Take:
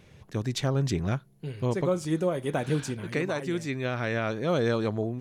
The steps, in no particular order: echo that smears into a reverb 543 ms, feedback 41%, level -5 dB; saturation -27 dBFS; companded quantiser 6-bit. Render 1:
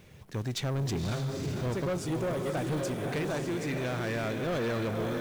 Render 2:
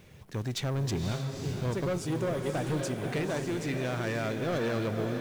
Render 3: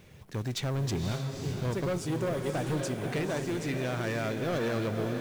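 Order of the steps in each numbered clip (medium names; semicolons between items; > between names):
companded quantiser > echo that smears into a reverb > saturation; companded quantiser > saturation > echo that smears into a reverb; saturation > companded quantiser > echo that smears into a reverb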